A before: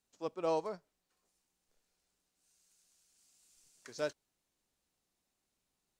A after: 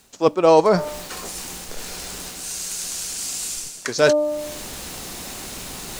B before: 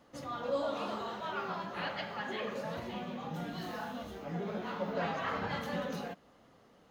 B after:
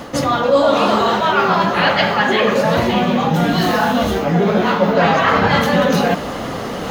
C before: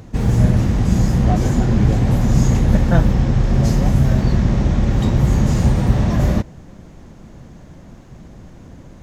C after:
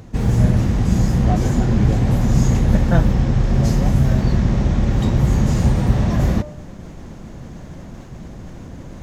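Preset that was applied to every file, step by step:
de-hum 299.4 Hz, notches 4; reverse; upward compressor, threshold -25 dBFS; reverse; peak normalisation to -2 dBFS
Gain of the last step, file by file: +17.5 dB, +18.0 dB, -1.0 dB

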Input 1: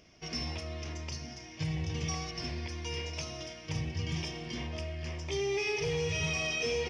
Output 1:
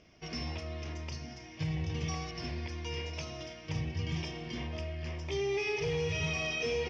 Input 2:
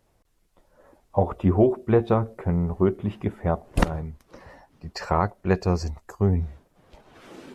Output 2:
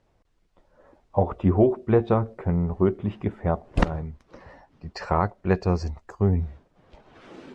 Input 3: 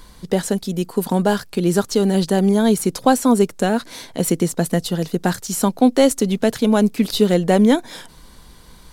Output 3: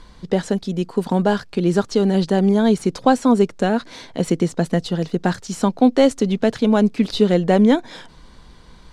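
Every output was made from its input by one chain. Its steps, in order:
distance through air 94 m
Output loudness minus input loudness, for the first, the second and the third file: -1.0 LU, -0.5 LU, -0.5 LU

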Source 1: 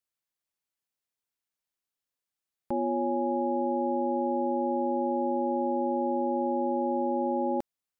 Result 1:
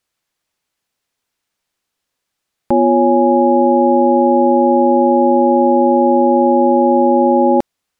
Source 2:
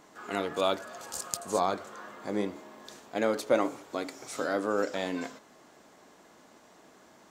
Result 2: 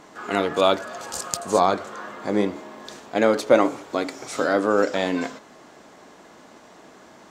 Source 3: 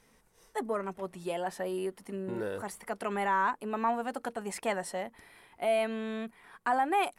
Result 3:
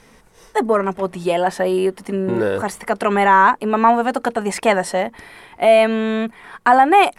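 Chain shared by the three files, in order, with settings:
treble shelf 10 kHz -11 dB; peak normalisation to -2 dBFS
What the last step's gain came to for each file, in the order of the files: +17.0 dB, +9.0 dB, +16.0 dB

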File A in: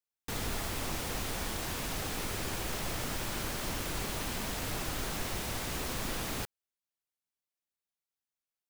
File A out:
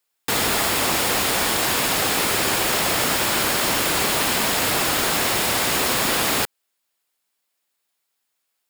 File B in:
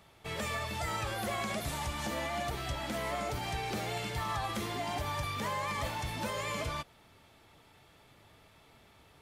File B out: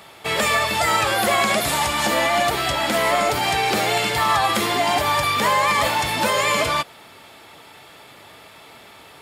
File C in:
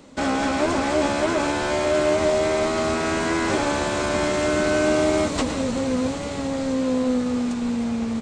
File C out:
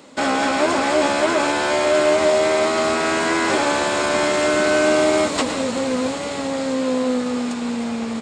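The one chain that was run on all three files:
high-pass 400 Hz 6 dB/octave; band-stop 6 kHz, Q 12; normalise loudness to -19 LUFS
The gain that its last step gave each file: +17.5 dB, +18.0 dB, +5.5 dB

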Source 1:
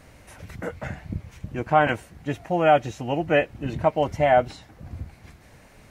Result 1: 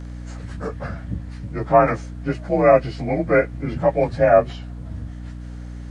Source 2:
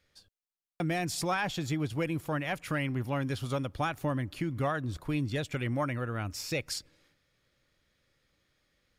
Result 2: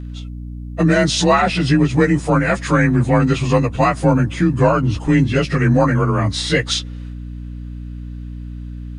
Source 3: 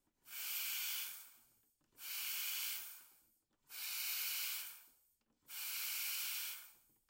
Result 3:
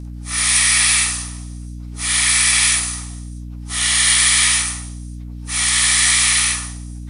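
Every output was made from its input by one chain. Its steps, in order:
frequency axis rescaled in octaves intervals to 90%; hum 60 Hz, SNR 12 dB; peak normalisation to -1.5 dBFS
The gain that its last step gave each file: +5.0 dB, +18.5 dB, +29.5 dB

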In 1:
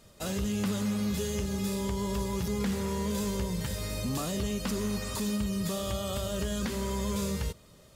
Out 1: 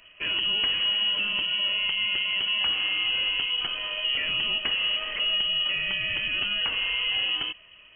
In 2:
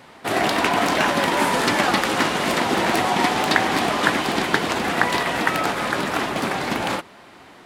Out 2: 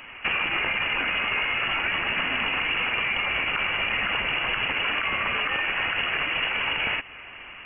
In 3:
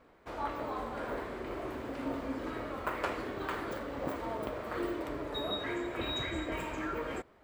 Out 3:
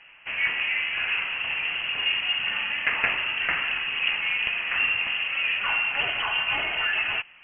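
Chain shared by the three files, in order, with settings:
peak limiter -13 dBFS; high-pass 110 Hz 12 dB/octave; frequency inversion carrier 3.1 kHz; compression 6:1, threshold -27 dBFS; normalise loudness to -24 LUFS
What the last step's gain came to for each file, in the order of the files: +6.0 dB, +4.0 dB, +11.0 dB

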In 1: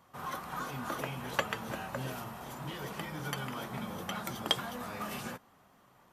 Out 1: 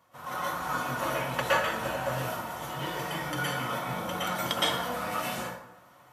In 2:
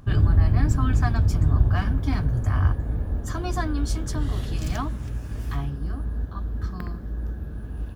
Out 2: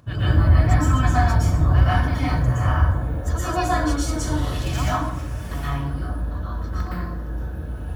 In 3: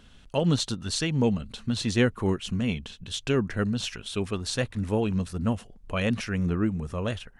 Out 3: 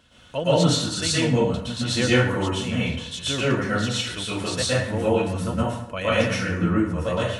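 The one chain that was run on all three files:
high-pass 120 Hz 6 dB/octave; peaking EQ 210 Hz -7.5 dB 0.65 oct; comb of notches 400 Hz; plate-style reverb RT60 0.72 s, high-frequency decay 0.65×, pre-delay 105 ms, DRR -9 dB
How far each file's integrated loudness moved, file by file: +7.0 LU, +3.5 LU, +5.0 LU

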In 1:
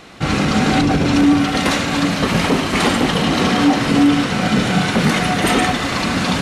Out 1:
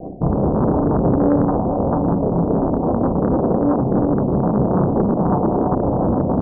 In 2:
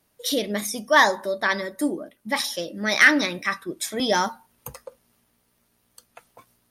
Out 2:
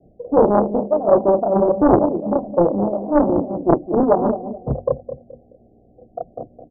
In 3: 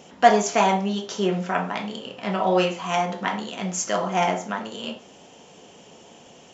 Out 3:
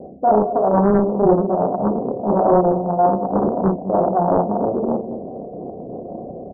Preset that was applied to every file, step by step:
local Wiener filter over 15 samples; hum notches 50/100/150 Hz; chorus voices 2, 0.43 Hz, delay 30 ms, depth 1 ms; harmonic-percussive split harmonic -7 dB; reverse; compression 5:1, threshold -33 dBFS; reverse; peak limiter -28.5 dBFS; Chebyshev low-pass 770 Hz, order 10; on a send: feedback delay 213 ms, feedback 32%, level -11 dB; on the sum: loudspeaker Doppler distortion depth 0.92 ms; normalise loudness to -18 LUFS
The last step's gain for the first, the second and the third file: +22.0 dB, +26.5 dB, +24.5 dB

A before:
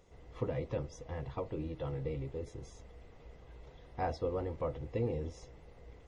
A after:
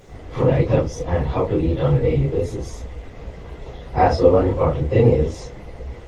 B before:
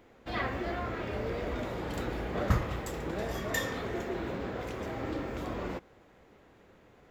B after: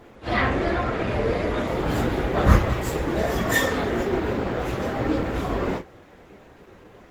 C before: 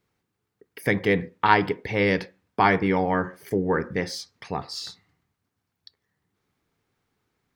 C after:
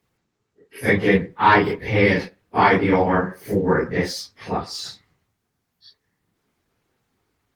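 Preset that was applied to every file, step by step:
phase randomisation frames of 100 ms; Opus 20 kbps 48 kHz; peak normalisation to -2 dBFS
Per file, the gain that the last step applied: +20.0 dB, +12.0 dB, +5.5 dB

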